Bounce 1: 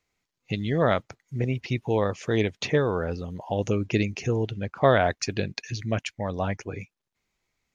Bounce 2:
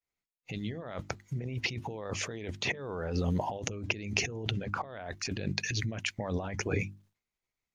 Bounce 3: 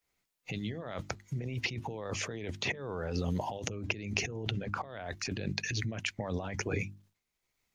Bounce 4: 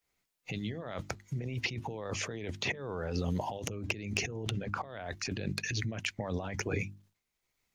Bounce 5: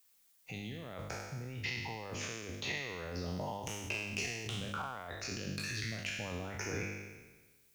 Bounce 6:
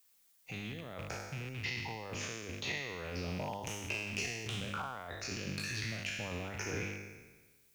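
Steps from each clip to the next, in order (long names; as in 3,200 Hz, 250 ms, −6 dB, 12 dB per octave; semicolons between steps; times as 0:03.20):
compressor whose output falls as the input rises −35 dBFS, ratio −1; mains-hum notches 50/100/150/200/250/300/350 Hz; downward expander −57 dBFS
multiband upward and downward compressor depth 40%; level −1.5 dB
wavefolder on the positive side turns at −19 dBFS
peak hold with a decay on every bin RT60 1.27 s; background noise blue −60 dBFS; level −8.5 dB
loose part that buzzes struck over −43 dBFS, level −35 dBFS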